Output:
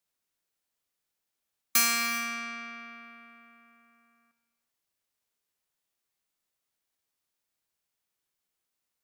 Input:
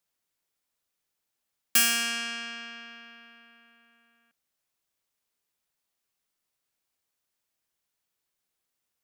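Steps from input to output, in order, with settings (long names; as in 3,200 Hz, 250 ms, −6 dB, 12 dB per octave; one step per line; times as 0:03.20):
formants moved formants −4 semitones
reverb whose tail is shaped and stops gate 410 ms flat, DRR 11.5 dB
level −2 dB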